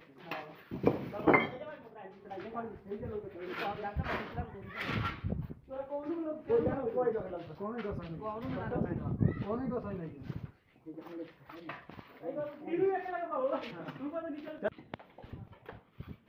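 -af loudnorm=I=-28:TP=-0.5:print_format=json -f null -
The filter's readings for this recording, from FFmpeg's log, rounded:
"input_i" : "-36.6",
"input_tp" : "-10.2",
"input_lra" : "5.6",
"input_thresh" : "-47.5",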